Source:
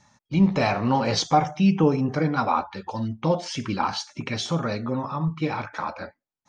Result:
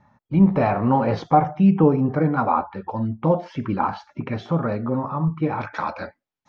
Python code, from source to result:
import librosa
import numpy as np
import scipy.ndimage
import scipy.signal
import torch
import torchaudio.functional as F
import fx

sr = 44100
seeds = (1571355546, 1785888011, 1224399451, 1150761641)

y = fx.lowpass(x, sr, hz=fx.steps((0.0, 1400.0), (5.61, 4700.0)), slope=12)
y = y * 10.0 ** (3.5 / 20.0)